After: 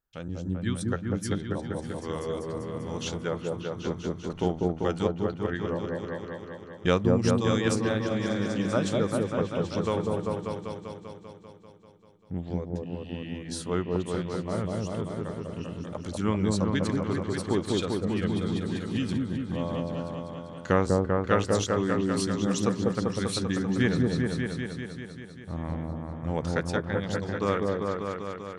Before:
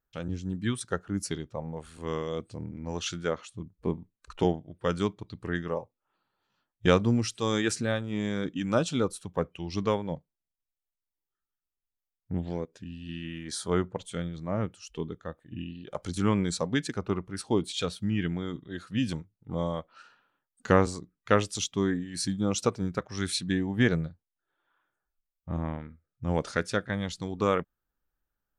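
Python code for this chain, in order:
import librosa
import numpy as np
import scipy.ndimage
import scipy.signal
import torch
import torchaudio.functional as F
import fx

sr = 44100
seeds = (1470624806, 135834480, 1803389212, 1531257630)

y = fx.echo_opening(x, sr, ms=196, hz=750, octaves=1, feedback_pct=70, wet_db=0)
y = F.gain(torch.from_numpy(y), -2.0).numpy()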